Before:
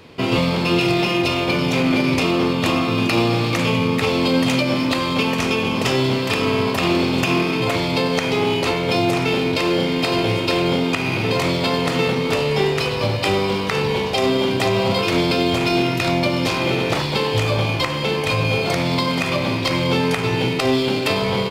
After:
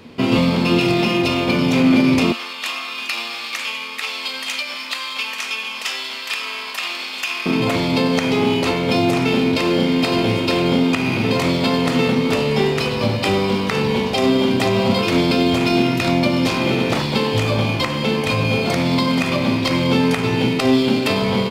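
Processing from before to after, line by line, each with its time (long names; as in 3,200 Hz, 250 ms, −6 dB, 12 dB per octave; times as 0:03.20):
0:02.32–0:07.46: high-pass filter 1,500 Hz
whole clip: parametric band 230 Hz +12.5 dB 0.32 octaves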